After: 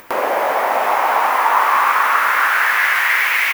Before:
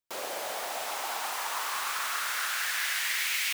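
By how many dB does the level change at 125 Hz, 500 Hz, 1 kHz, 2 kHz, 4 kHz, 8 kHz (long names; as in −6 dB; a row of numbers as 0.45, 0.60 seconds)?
can't be measured, +19.0 dB, +21.0 dB, +17.0 dB, +5.0 dB, 0.0 dB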